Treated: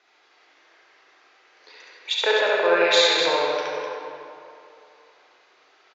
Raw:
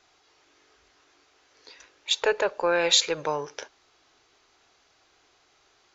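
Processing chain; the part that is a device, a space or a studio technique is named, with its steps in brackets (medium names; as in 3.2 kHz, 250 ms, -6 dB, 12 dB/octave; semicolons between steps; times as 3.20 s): station announcement (band-pass 330–4200 Hz; peaking EQ 2 kHz +4 dB 0.52 oct; loudspeakers at several distances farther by 12 m -10 dB, 24 m -2 dB, 87 m -9 dB; reverberation RT60 2.7 s, pre-delay 55 ms, DRR -1.5 dB)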